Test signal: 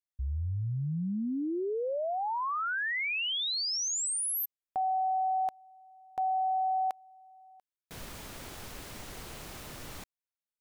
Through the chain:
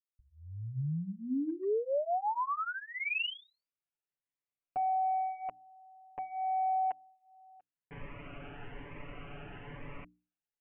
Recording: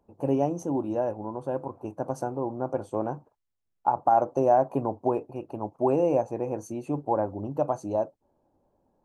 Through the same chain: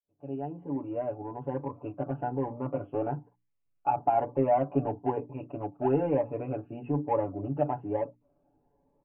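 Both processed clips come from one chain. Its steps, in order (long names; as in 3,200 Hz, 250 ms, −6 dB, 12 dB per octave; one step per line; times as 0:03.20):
fade in at the beginning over 1.55 s
mains-hum notches 60/120/180/240/300/360 Hz
in parallel at −8.5 dB: hard clipping −28 dBFS
on the sum: Butterworth low-pass 2,900 Hz 96 dB per octave
comb filter 7 ms, depth 98%
phaser whose notches keep moving one way rising 1.1 Hz
level −4.5 dB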